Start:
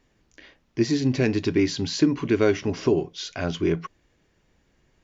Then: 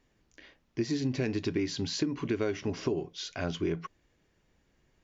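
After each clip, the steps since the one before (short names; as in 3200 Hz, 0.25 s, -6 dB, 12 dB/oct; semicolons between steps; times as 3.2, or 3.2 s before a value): compressor, threshold -21 dBFS, peak gain reduction 7.5 dB; gain -5 dB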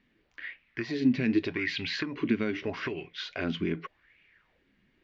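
EQ curve 830 Hz 0 dB, 2100 Hz +12 dB, 4000 Hz +6 dB, 7000 Hz -11 dB; LFO bell 0.83 Hz 200–2500 Hz +16 dB; gain -5.5 dB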